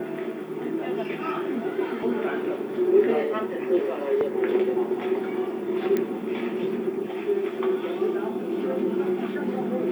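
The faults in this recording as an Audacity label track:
5.970000	5.970000	click −14 dBFS

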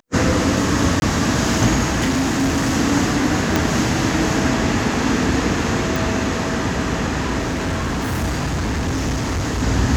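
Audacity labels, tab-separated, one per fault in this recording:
1.000000	1.020000	drop-out 21 ms
2.000000	2.750000	clipping −14.5 dBFS
3.560000	3.560000	click −3 dBFS
5.960000	5.960000	click
7.380000	9.630000	clipping −18 dBFS

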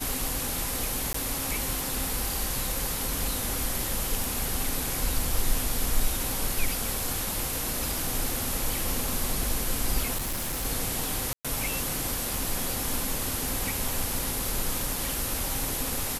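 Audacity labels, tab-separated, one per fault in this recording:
1.130000	1.140000	drop-out 14 ms
4.240000	4.240000	click
10.160000	10.660000	clipping −27 dBFS
11.330000	11.450000	drop-out 116 ms

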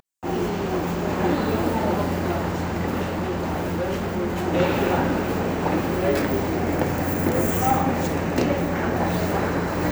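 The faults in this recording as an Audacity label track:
3.020000	4.480000	clipping −21.5 dBFS

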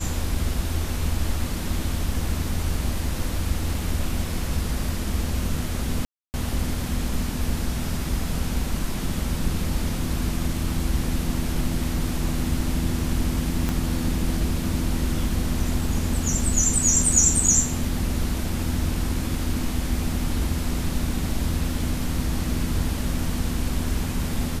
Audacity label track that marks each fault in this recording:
6.050000	6.340000	drop-out 289 ms
13.690000	13.690000	click −11 dBFS

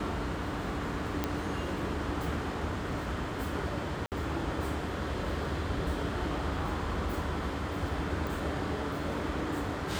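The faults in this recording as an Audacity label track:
1.240000	1.240000	click −15 dBFS
4.060000	4.120000	drop-out 58 ms
8.270000	8.270000	click

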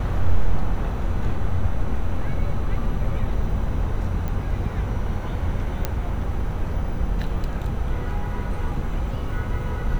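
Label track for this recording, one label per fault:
4.280000	4.280000	click −17 dBFS
5.850000	5.850000	click −9 dBFS

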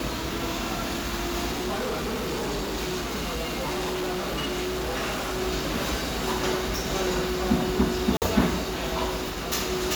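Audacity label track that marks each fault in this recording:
1.510000	5.420000	clipping −25.5 dBFS
8.170000	8.220000	drop-out 48 ms

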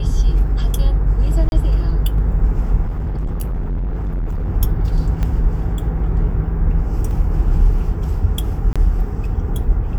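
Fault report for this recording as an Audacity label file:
1.490000	1.520000	drop-out 31 ms
2.870000	4.500000	clipping −18 dBFS
5.230000	5.230000	click −11 dBFS
7.110000	7.110000	drop-out 2.4 ms
8.730000	8.760000	drop-out 26 ms

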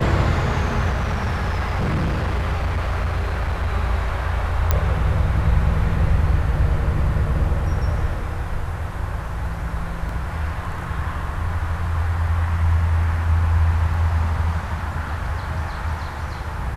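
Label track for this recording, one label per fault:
0.910000	3.730000	clipping −17.5 dBFS
4.710000	4.710000	click −4 dBFS
10.090000	10.090000	drop-out 3 ms

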